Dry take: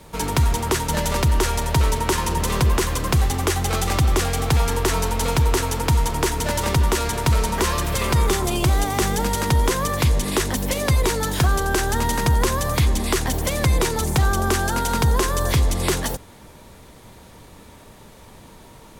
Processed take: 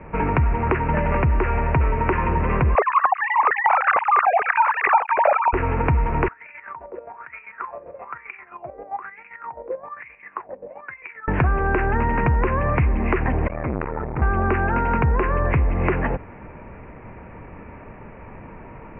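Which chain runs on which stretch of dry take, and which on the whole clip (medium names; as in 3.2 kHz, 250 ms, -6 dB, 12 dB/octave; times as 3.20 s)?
2.75–5.53 s: formants replaced by sine waves + step-sequenced high-pass 6.6 Hz 620–1900 Hz
6.28–11.28 s: wah-wah 1.1 Hz 510–2400 Hz, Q 9.9 + square tremolo 7.6 Hz, depth 60%, duty 40%
13.47–14.22 s: low-pass 1.4 kHz + peaking EQ 150 Hz -9 dB 2.8 oct + transformer saturation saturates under 590 Hz
whole clip: steep low-pass 2.6 kHz 96 dB/octave; compression 3:1, threshold -23 dBFS; trim +5.5 dB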